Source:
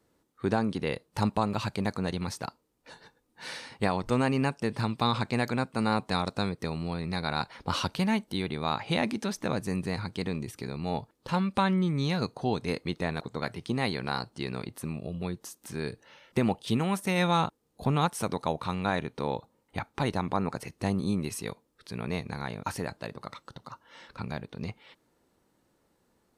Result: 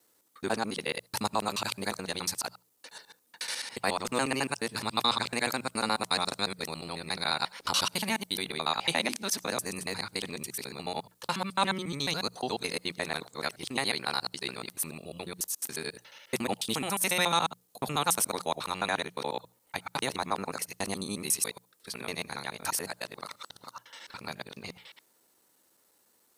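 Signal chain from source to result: local time reversal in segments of 71 ms; RIAA curve recording; notches 60/120/180 Hz

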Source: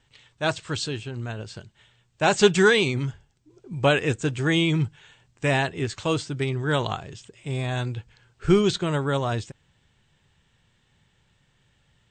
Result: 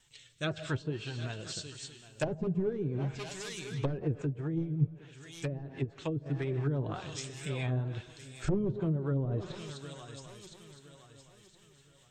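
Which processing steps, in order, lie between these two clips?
rotary speaker horn 0.85 Hz, later 5 Hz, at 3.44; wavefolder -16.5 dBFS; high shelf 6800 Hz +12 dB; swung echo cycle 1.015 s, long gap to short 3:1, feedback 32%, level -17 dB; plate-style reverb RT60 1.1 s, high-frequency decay 0.95×, pre-delay 0.1 s, DRR 15 dB; flange 2 Hz, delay 5.1 ms, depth 2.8 ms, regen +48%; treble ducked by the level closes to 330 Hz, closed at -25 dBFS; high shelf 2900 Hz +10.5 dB; notch 4700 Hz, Q 19; 4.22–6.26 upward expander 1.5:1, over -36 dBFS

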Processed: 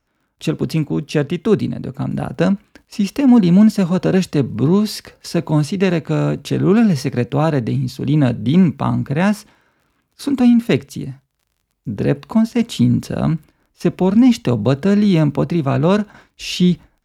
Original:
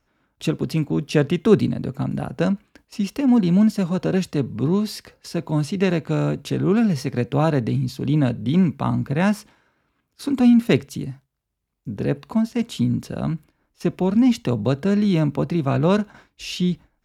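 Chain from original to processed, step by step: crackle 32/s -51 dBFS; AGC gain up to 10 dB; gain -1 dB

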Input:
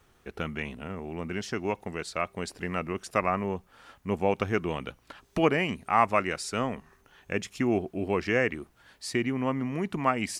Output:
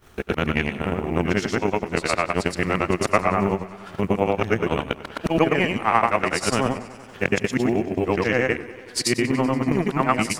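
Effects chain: short-time reversal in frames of 0.239 s; transient shaper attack +10 dB, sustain -8 dB; in parallel at +2 dB: negative-ratio compressor -32 dBFS, ratio -0.5; on the sum: short-mantissa float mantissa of 6-bit; warbling echo 95 ms, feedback 78%, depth 93 cents, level -19 dB; gain +3 dB

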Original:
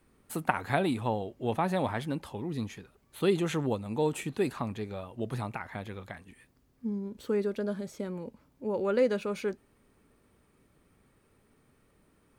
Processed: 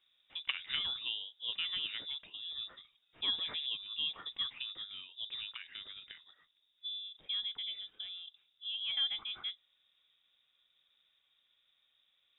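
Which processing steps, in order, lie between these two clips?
inverted band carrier 3700 Hz; gain -9 dB

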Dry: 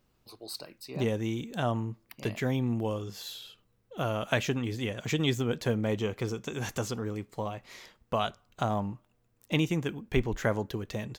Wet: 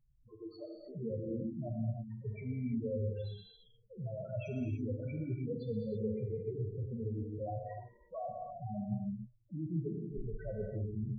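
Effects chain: low-pass opened by the level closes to 670 Hz, open at -26 dBFS; reverse; compressor 20:1, threshold -36 dBFS, peak gain reduction 17.5 dB; reverse; loudest bins only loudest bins 2; non-linear reverb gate 0.35 s flat, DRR 1 dB; gain +6 dB

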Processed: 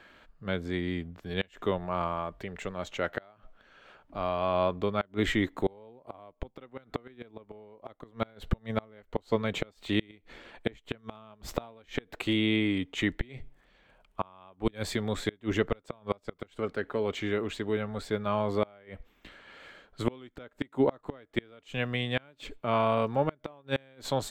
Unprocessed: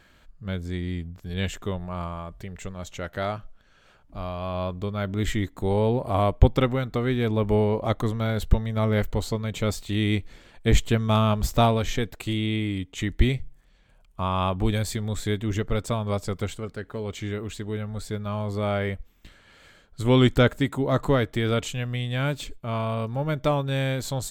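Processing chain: three-band isolator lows -13 dB, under 230 Hz, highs -13 dB, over 3800 Hz; flipped gate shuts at -18 dBFS, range -31 dB; gain +4 dB

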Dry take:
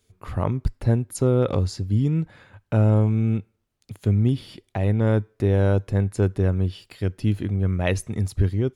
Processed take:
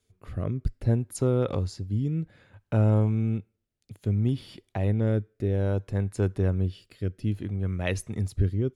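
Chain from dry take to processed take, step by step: rotary speaker horn 0.6 Hz; gain -3.5 dB

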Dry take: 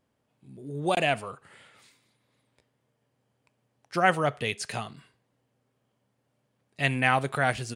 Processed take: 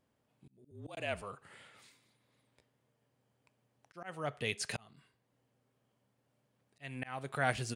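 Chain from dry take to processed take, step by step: auto swell 0.628 s; 0.71–1.22 frequency shift -38 Hz; gain -3 dB

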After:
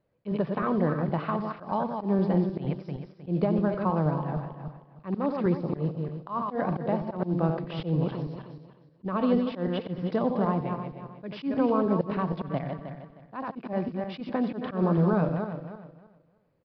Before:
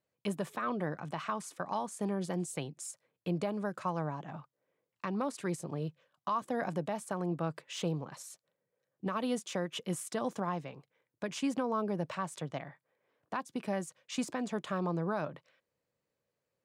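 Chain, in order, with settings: regenerating reverse delay 0.156 s, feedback 46%, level -6 dB; in parallel at -2.5 dB: compressor, threshold -46 dBFS, peak gain reduction 17.5 dB; on the sum: tilt -4.5 dB/oct; echo 90 ms -14 dB; auto swell 0.115 s; low shelf 220 Hz -10.5 dB; modulation noise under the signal 34 dB; downsampling 11025 Hz; gain +4 dB

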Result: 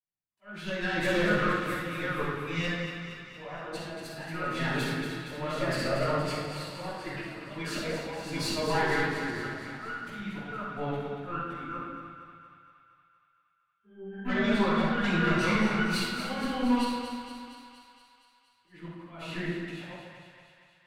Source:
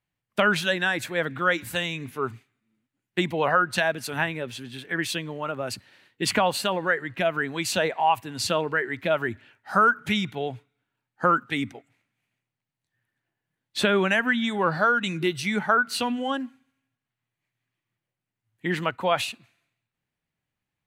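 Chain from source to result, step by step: reverse delay 0.443 s, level -6 dB; gate -41 dBFS, range -28 dB; high shelf 4700 Hz -9.5 dB; auto swell 0.664 s; compressor 8:1, threshold -36 dBFS, peak gain reduction 18 dB; auto swell 0.583 s; 11.75–14.25 octave resonator G, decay 0.31 s; tube stage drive 34 dB, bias 0.75; thinning echo 0.234 s, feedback 66%, high-pass 500 Hz, level -8 dB; shoebox room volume 680 m³, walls mixed, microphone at 9.6 m

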